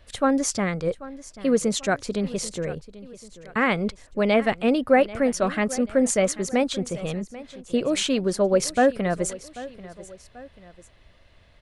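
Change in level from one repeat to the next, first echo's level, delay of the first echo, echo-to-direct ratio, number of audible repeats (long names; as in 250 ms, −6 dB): −6.5 dB, −17.5 dB, 788 ms, −16.5 dB, 2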